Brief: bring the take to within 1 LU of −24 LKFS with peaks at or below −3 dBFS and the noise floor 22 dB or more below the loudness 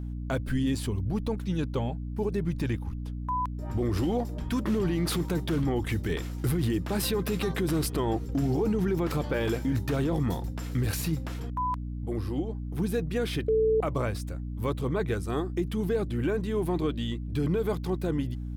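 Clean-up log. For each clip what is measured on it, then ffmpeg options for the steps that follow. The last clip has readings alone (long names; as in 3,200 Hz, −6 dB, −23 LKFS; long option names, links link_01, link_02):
mains hum 60 Hz; hum harmonics up to 300 Hz; level of the hum −32 dBFS; integrated loudness −29.5 LKFS; sample peak −17.5 dBFS; target loudness −24.0 LKFS
→ -af "bandreject=frequency=60:width_type=h:width=4,bandreject=frequency=120:width_type=h:width=4,bandreject=frequency=180:width_type=h:width=4,bandreject=frequency=240:width_type=h:width=4,bandreject=frequency=300:width_type=h:width=4"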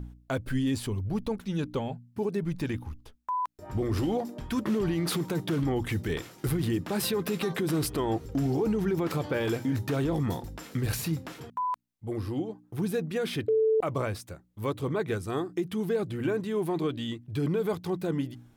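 mains hum none found; integrated loudness −30.5 LKFS; sample peak −18.5 dBFS; target loudness −24.0 LKFS
→ -af "volume=6.5dB"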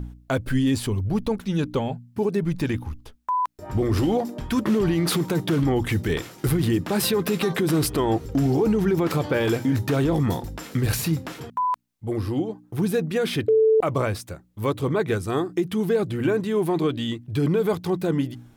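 integrated loudness −24.0 LKFS; sample peak −12.0 dBFS; background noise floor −54 dBFS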